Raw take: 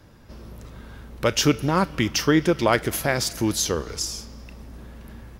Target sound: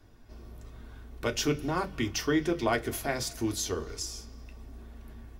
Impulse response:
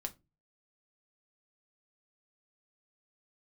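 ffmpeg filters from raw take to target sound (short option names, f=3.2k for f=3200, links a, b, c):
-filter_complex "[0:a]bandreject=f=1.7k:w=29[a];[1:a]atrim=start_sample=2205,asetrate=83790,aresample=44100[b];[a][b]afir=irnorm=-1:irlink=0,volume=-1.5dB"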